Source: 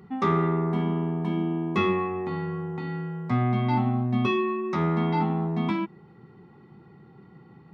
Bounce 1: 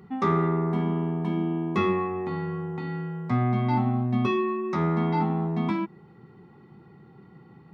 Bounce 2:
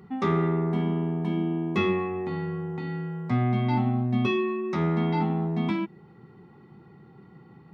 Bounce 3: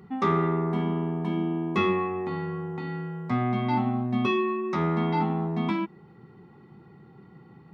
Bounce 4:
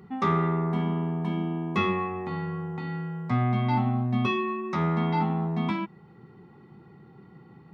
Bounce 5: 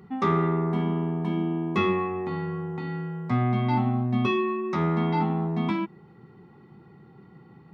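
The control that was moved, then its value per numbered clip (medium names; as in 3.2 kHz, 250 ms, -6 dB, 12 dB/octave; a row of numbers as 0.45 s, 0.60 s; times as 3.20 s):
dynamic bell, frequency: 3 kHz, 1.1 kHz, 120 Hz, 340 Hz, 9 kHz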